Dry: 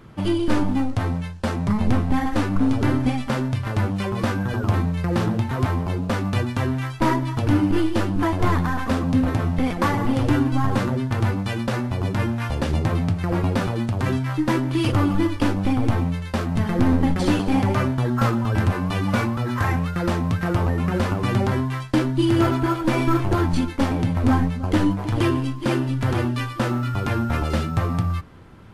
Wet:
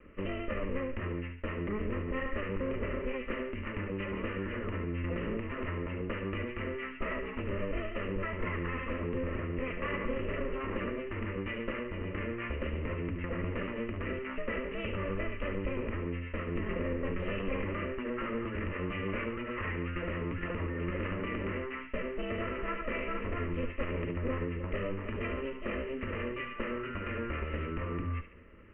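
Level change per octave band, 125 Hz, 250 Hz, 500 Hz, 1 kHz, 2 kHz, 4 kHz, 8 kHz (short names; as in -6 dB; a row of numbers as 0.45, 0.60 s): -17.0 dB, -16.0 dB, -8.5 dB, -15.0 dB, -8.0 dB, -14.5 dB, under -40 dB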